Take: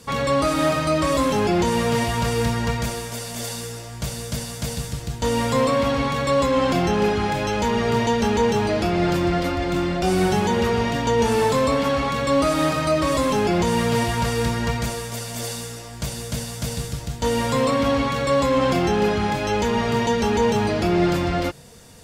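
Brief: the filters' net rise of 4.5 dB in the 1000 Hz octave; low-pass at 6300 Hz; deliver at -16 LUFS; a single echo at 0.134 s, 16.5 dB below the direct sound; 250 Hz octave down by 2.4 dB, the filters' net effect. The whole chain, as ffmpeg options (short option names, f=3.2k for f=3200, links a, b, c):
-af "lowpass=6.3k,equalizer=f=250:t=o:g=-3.5,equalizer=f=1k:t=o:g=5.5,aecho=1:1:134:0.15,volume=4.5dB"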